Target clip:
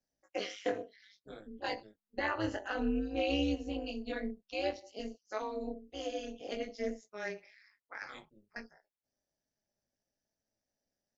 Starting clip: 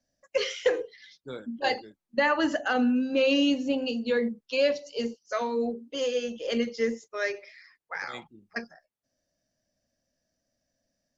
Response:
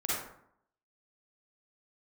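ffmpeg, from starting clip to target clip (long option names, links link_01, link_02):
-af "flanger=delay=18:depth=4:speed=0.58,tremolo=f=210:d=0.889,volume=-3.5dB"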